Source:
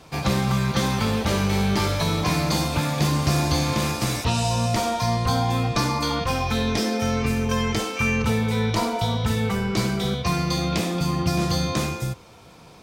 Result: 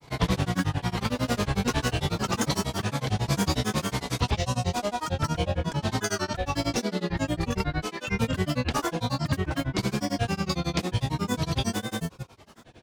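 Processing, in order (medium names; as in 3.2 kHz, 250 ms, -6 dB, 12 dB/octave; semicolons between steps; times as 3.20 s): granulator 100 ms, grains 11 per s, pitch spread up and down by 7 st; trim -1 dB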